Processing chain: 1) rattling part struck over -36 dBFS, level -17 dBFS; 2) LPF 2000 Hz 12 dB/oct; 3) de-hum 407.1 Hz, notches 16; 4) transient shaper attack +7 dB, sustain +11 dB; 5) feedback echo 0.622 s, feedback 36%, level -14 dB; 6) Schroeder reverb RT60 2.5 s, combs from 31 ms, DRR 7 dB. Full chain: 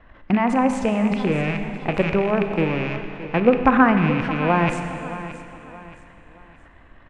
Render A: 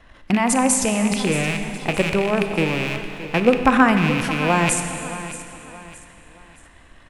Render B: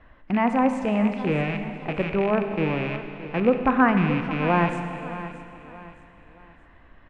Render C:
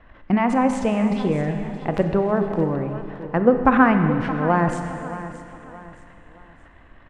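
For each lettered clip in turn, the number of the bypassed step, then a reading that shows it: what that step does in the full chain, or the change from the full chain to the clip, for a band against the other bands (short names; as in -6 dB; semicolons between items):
2, 4 kHz band +8.5 dB; 4, loudness change -3.0 LU; 1, 2 kHz band -2.5 dB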